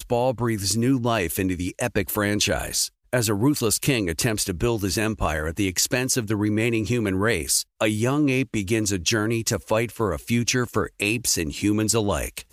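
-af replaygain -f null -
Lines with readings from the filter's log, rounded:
track_gain = +4.8 dB
track_peak = 0.315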